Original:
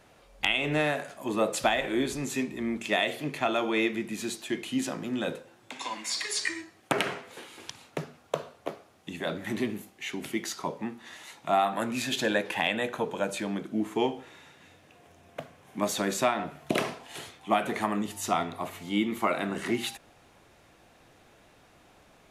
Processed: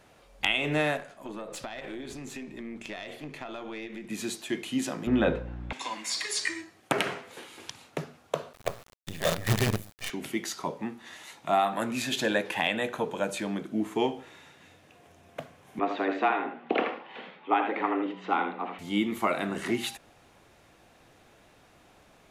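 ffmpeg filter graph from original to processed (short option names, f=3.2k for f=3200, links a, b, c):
-filter_complex "[0:a]asettb=1/sr,asplit=3[a][b][c];[a]atrim=end=0.974[d];[b]atrim=start=0.97:end=4.1,asetpts=PTS-STARTPTS,afade=t=in:d=0.004:c=qsin,afade=t=out:st=3.126:d=0.004:c=qsin,highshelf=f=7.9k:g=-9.5,acompressor=threshold=-30dB:ratio=16:attack=3.2:release=140:knee=1:detection=peak,aeval=exprs='(tanh(12.6*val(0)+0.75)-tanh(0.75))/12.6':c=same[e];[c]atrim=start=4.096[f];[d][e]acrossfade=d=0.004:c1=hsin:c2=qsin[g];[g][f]acrossfade=d=0.004:c1=qsin:c2=hsin,asettb=1/sr,asplit=3[h][i][j];[h]atrim=end=5.074[k];[i]atrim=start=5.07:end=5.73,asetpts=PTS-STARTPTS,afade=t=in:d=0.004:c=qsin,afade=t=out:st=0.656:d=0.004:c=qsin,lowpass=2.3k,aeval=exprs='val(0)+0.00631*(sin(2*PI*60*n/s)+sin(2*PI*2*60*n/s)/2+sin(2*PI*3*60*n/s)/3+sin(2*PI*4*60*n/s)/4+sin(2*PI*5*60*n/s)/5)':c=same,acontrast=87[l];[j]atrim=start=5.726[m];[k][l]acrossfade=d=0.004:c1=hsin:c2=qsin[n];[n][m]acrossfade=d=0.004:c1=qsin:c2=hsin,asettb=1/sr,asplit=3[o][p][q];[o]atrim=end=8.534[r];[p]atrim=start=8.53:end=10.1,asetpts=PTS-STARTPTS,afade=t=in:d=0.004:c=qsin,afade=t=out:st=1.566:d=0.004:c=qsin,equalizer=f=110:w=1.7:g=15,aecho=1:1:1.7:0.96,atrim=end_sample=69237,acrusher=bits=5:dc=4:mix=0:aa=0.000001[s];[q]atrim=start=10.096[t];[r][s]acrossfade=d=0.004:c1=hsin:c2=qsin[u];[u][t]acrossfade=d=0.004:c1=qsin:c2=hsin,asettb=1/sr,asplit=3[v][w][x];[v]atrim=end=15.794[y];[w]atrim=start=15.79:end=18.79,asetpts=PTS-STARTPTS,afade=t=in:d=0.004:c=qsin,afade=t=out:st=2.996:d=0.004:c=qsin,lowpass=f=2.8k:w=0.5412,lowpass=f=2.8k:w=1.3066,aecho=1:1:81:0.447,atrim=end_sample=132300,afreqshift=89[z];[x]atrim=start=18.786[aa];[y][z]acrossfade=d=0.004:c1=hsin:c2=qsin[ab];[ab][aa]acrossfade=d=0.004:c1=qsin:c2=hsin"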